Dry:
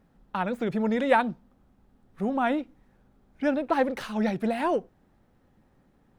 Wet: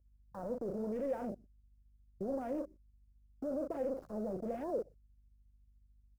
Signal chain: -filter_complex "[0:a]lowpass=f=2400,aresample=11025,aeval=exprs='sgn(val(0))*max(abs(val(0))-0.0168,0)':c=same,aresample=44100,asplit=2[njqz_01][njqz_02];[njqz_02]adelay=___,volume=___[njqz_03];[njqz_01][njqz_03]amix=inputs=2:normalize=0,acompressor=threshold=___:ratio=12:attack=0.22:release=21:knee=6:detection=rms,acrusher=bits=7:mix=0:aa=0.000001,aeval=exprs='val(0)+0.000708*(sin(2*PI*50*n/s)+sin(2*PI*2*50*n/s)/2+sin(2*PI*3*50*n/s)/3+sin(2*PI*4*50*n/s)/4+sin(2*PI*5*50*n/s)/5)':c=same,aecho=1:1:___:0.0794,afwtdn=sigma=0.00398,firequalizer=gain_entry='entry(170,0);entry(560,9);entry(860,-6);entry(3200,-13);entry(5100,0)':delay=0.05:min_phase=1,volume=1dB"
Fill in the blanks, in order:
38, -13.5dB, -37dB, 120